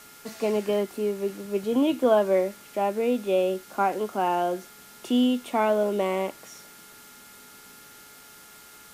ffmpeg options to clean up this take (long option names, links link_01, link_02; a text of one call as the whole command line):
ffmpeg -i in.wav -af "adeclick=threshold=4,bandreject=frequency=425.6:width_type=h:width=4,bandreject=frequency=851.2:width_type=h:width=4,bandreject=frequency=1276.8:width_type=h:width=4,bandreject=frequency=1702.4:width_type=h:width=4,bandreject=frequency=2128:width_type=h:width=4,bandreject=frequency=1400:width=30,afftdn=noise_reduction=21:noise_floor=-49" out.wav